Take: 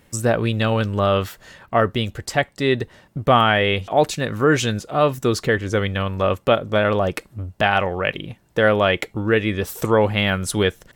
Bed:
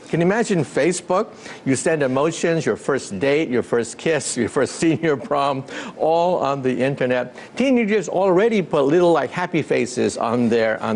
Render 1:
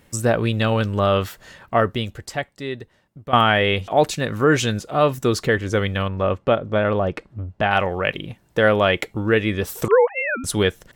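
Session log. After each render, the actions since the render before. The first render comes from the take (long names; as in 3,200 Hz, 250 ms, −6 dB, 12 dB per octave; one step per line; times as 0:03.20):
0:01.74–0:03.33: fade out quadratic, to −14.5 dB
0:06.08–0:07.71: head-to-tape spacing loss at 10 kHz 20 dB
0:09.88–0:10.44: three sine waves on the formant tracks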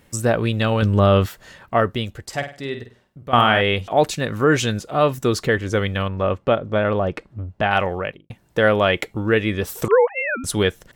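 0:00.82–0:01.26: low-shelf EQ 410 Hz +7.5 dB
0:02.25–0:03.61: flutter between parallel walls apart 8.6 metres, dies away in 0.37 s
0:07.90–0:08.30: fade out and dull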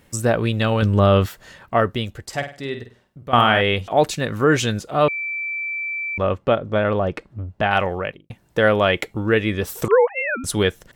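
0:05.08–0:06.18: beep over 2,330 Hz −23.5 dBFS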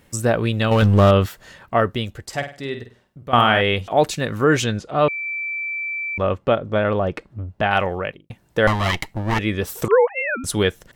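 0:00.71–0:01.11: power curve on the samples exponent 0.7
0:04.64–0:05.26: high-frequency loss of the air 75 metres
0:08.67–0:09.39: lower of the sound and its delayed copy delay 1 ms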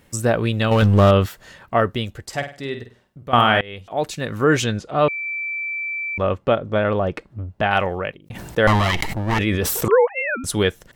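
0:03.61–0:04.49: fade in, from −22.5 dB
0:08.20–0:09.90: level that may fall only so fast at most 26 dB per second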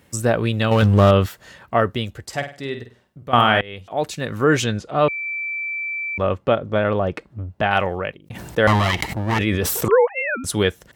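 high-pass filter 44 Hz 24 dB per octave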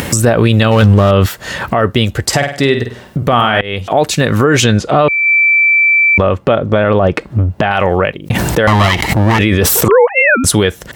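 upward compression, threshold −18 dBFS
boost into a limiter +13.5 dB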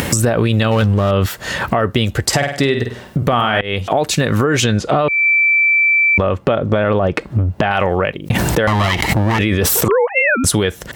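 downward compressor, threshold −11 dBFS, peak gain reduction 7 dB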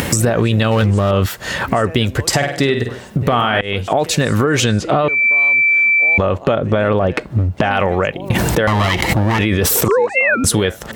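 mix in bed −14 dB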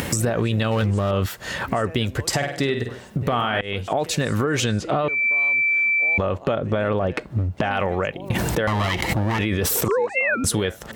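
level −7 dB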